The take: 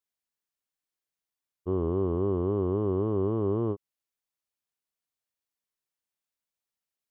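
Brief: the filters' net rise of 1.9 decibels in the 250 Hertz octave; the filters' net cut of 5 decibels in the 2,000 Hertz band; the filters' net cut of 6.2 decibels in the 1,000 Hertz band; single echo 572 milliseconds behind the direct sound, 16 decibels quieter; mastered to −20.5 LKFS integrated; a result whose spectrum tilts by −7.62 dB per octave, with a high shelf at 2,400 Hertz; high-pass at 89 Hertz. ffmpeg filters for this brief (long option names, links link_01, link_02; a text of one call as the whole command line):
ffmpeg -i in.wav -af "highpass=89,equalizer=frequency=250:width_type=o:gain=3.5,equalizer=frequency=1000:width_type=o:gain=-7,equalizer=frequency=2000:width_type=o:gain=-6,highshelf=frequency=2400:gain=4.5,aecho=1:1:572:0.158,volume=7.5dB" out.wav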